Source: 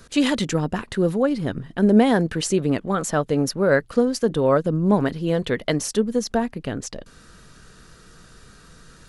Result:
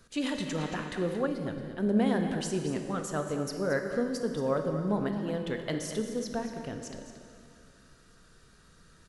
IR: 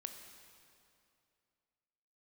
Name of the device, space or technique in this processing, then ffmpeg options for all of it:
cave: -filter_complex "[0:a]aecho=1:1:227:0.266[a];[1:a]atrim=start_sample=2205[b];[a][b]afir=irnorm=-1:irlink=0,asettb=1/sr,asplit=3[c][d][e];[c]atrim=end=0.584[f];[d]atrim=start=0.58:end=1.27,asetpts=PTS-STARTPTS,afade=t=in:d=0.004:c=qsin,afade=t=out:st=0.686:d=0.004:c=qsin,equalizer=f=1.8k:t=o:w=2.4:g=6[g];[e]atrim=start=1.266[h];[f][g]acrossfade=d=0.004:c1=hsin:c2=qsin[i];[i][h]acrossfade=d=0.004:c1=qsin:c2=hsin,volume=-7.5dB"

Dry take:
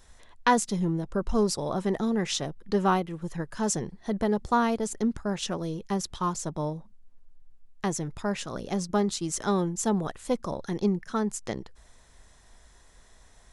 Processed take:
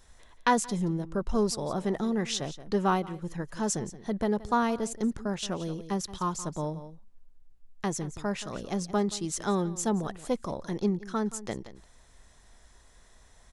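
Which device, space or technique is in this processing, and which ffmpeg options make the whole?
ducked delay: -filter_complex "[0:a]asplit=3[a][b][c];[b]adelay=175,volume=-8.5dB[d];[c]apad=whole_len=604170[e];[d][e]sidechaincompress=threshold=-30dB:ratio=12:attack=9.4:release=1060[f];[a][f]amix=inputs=2:normalize=0,volume=-2dB"

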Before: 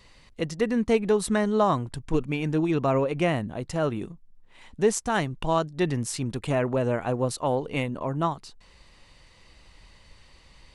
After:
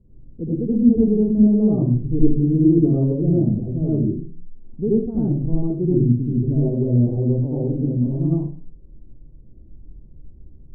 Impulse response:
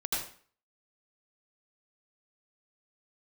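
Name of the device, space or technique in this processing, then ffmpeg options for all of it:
next room: -filter_complex "[0:a]lowpass=f=340:w=0.5412,lowpass=f=340:w=1.3066[a];[1:a]atrim=start_sample=2205[b];[a][b]afir=irnorm=-1:irlink=0,volume=5.5dB"

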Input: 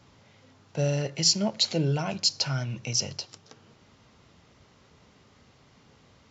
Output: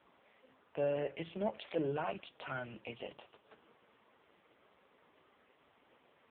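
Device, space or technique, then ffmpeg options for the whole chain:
telephone: -filter_complex "[0:a]asettb=1/sr,asplit=3[a][b][c];[a]atrim=end=0.914[d];[b]atrim=start=0.91:end=1.61,asetpts=PTS-STARTPTS,afade=t=in:d=0.004:c=qsin,afade=t=out:st=0.696:d=0.004:c=qsin,acrossover=split=4000[e][f];[f]acompressor=threshold=-33dB:ratio=4:attack=1:release=60[g];[e][g]amix=inputs=2:normalize=0[h];[c]atrim=start=1.606[i];[d][h]acrossfade=d=0.004:c1=hsin:c2=qsin[j];[j][i]acrossfade=d=0.004:c1=qsin:c2=hsin,highpass=360,lowpass=3.1k,asoftclip=type=tanh:threshold=-23.5dB,volume=-1dB" -ar 8000 -c:a libopencore_amrnb -b:a 5150

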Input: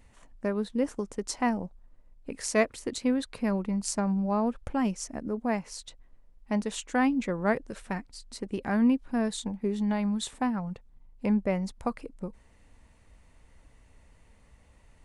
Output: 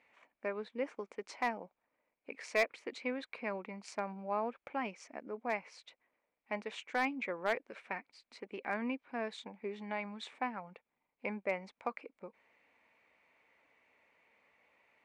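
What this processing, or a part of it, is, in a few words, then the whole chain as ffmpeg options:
megaphone: -af "highpass=460,lowpass=3k,equalizer=f=2.3k:t=o:w=0.29:g=12,asoftclip=type=hard:threshold=-18.5dB,volume=-4.5dB"

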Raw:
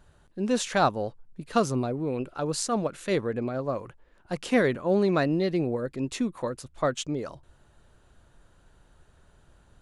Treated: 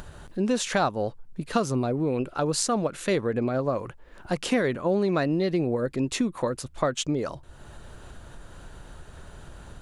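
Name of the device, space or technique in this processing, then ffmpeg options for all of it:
upward and downward compression: -af "acompressor=mode=upward:threshold=-40dB:ratio=2.5,acompressor=threshold=-29dB:ratio=3,volume=6.5dB"

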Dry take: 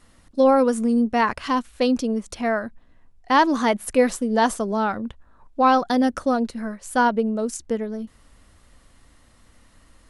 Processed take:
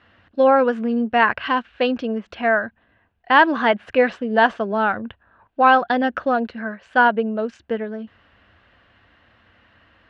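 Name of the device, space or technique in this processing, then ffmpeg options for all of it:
guitar cabinet: -af "highpass=96,equalizer=f=99:t=q:w=4:g=5,equalizer=f=150:t=q:w=4:g=-7,equalizer=f=260:t=q:w=4:g=-4,equalizer=f=700:t=q:w=4:g=4,equalizer=f=1.6k:t=q:w=4:g=10,equalizer=f=2.8k:t=q:w=4:g=7,lowpass=f=3.5k:w=0.5412,lowpass=f=3.5k:w=1.3066,volume=1dB"

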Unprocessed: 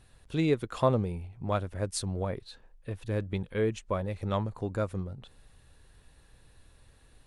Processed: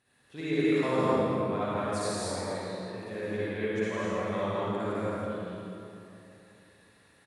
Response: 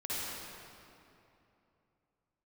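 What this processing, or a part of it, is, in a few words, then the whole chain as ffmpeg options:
stadium PA: -filter_complex "[0:a]highpass=190,equalizer=f=1.9k:t=o:w=0.5:g=7,aecho=1:1:166.2|204.1:0.708|0.708[a];[1:a]atrim=start_sample=2205[b];[a][b]afir=irnorm=-1:irlink=0,volume=-5.5dB"

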